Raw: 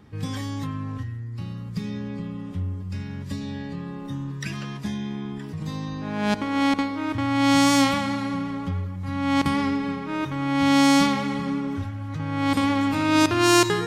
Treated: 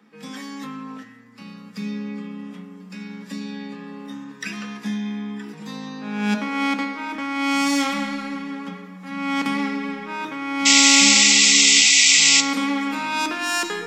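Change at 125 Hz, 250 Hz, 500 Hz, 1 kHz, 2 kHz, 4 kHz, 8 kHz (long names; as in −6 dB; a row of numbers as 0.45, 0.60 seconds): −10.5, −2.5, −6.5, −1.5, +8.0, +12.0, +16.5 decibels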